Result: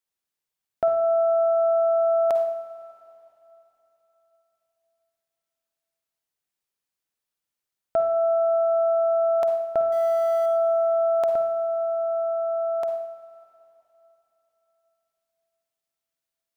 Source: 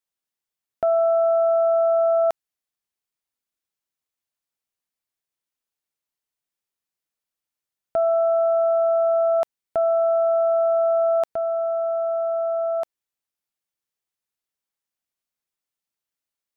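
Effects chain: 9.92–10.46 G.711 law mismatch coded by A; reverb, pre-delay 44 ms, DRR 5.5 dB

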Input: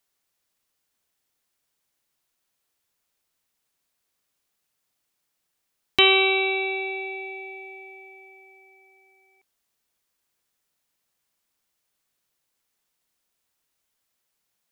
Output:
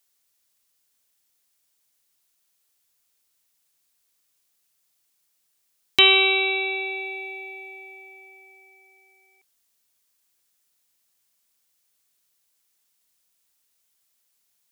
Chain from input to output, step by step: high shelf 3000 Hz +10.5 dB; gain -2.5 dB

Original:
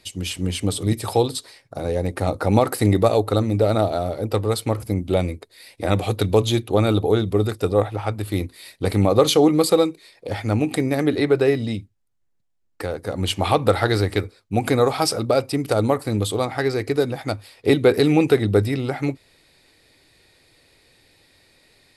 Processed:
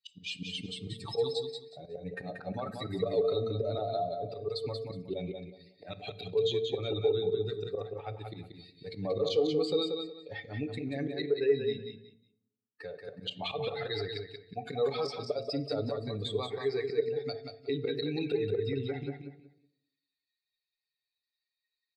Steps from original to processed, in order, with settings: per-bin expansion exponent 2; high shelf 3400 Hz +9.5 dB; comb 7 ms, depth 67%; de-hum 224.6 Hz, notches 3; auto swell 0.158 s; limiter -25 dBFS, peak gain reduction 20 dB; speaker cabinet 160–4900 Hz, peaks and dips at 300 Hz -4 dB, 450 Hz +8 dB, 950 Hz -7 dB, 1400 Hz -7 dB, 2300 Hz -4 dB, 3800 Hz +4 dB; feedback echo 0.183 s, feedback 23%, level -5.5 dB; on a send at -13 dB: reverb RT60 0.75 s, pre-delay 3 ms

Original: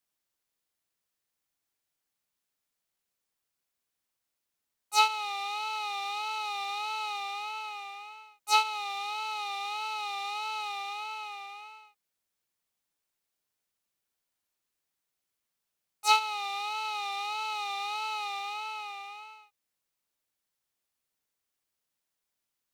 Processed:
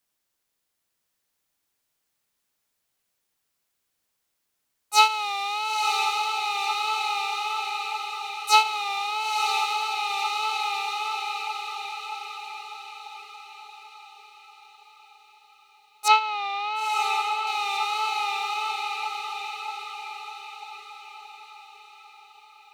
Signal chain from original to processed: 16.08–17.47 LPF 3200 Hz 12 dB/oct; on a send: diffused feedback echo 0.973 s, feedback 49%, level -5 dB; on the sum: gain +6 dB

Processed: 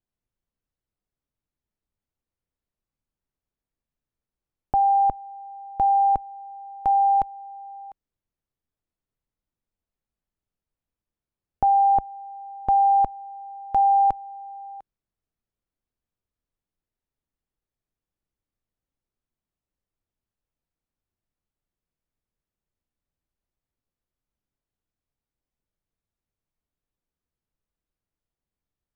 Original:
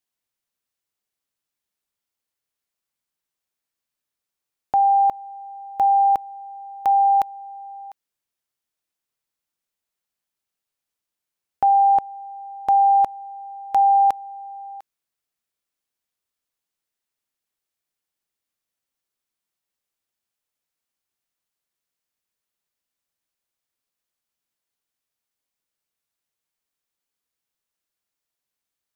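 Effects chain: tilt -4.5 dB/oct; gain -4 dB

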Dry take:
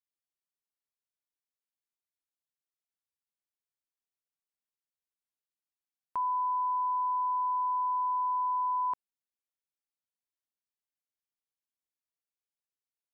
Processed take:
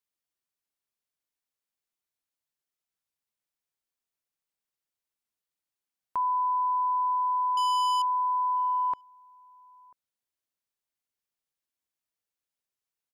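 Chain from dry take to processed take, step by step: 7.57–8.02 sample leveller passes 3; outdoor echo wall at 170 m, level -27 dB; gain +3.5 dB

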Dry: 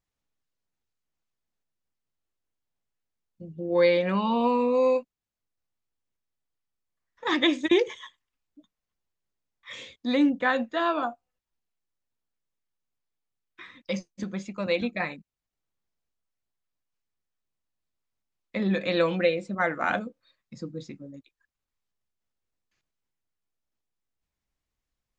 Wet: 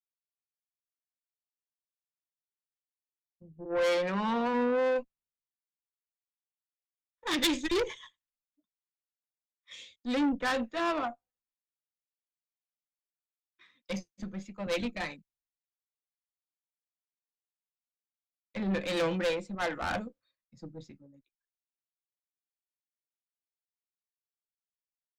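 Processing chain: 3.64–4.53 HPF 330 Hz -> 110 Hz 24 dB/oct; tube stage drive 27 dB, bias 0.4; three-band expander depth 100%

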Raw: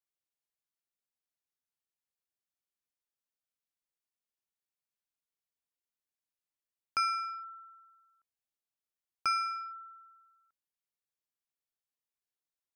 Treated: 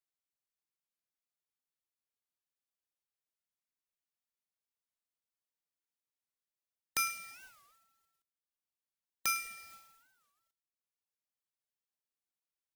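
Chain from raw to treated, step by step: spectral whitening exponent 0.1; reverb removal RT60 0.87 s; thin delay 0.105 s, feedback 33%, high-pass 1800 Hz, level -17 dB; record warp 45 rpm, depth 250 cents; gain -2 dB

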